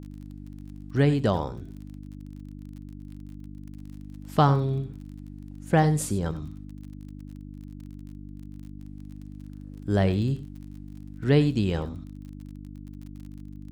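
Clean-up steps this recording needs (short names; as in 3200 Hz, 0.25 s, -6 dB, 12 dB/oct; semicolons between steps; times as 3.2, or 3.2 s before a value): de-click; de-hum 49.8 Hz, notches 6; inverse comb 92 ms -15.5 dB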